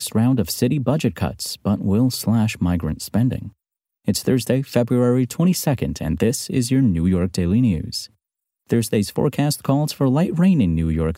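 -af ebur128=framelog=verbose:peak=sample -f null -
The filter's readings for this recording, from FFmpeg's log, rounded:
Integrated loudness:
  I:         -20.0 LUFS
  Threshold: -30.2 LUFS
Loudness range:
  LRA:         2.0 LU
  Threshold: -40.6 LUFS
  LRA low:   -21.5 LUFS
  LRA high:  -19.4 LUFS
Sample peak:
  Peak:       -3.6 dBFS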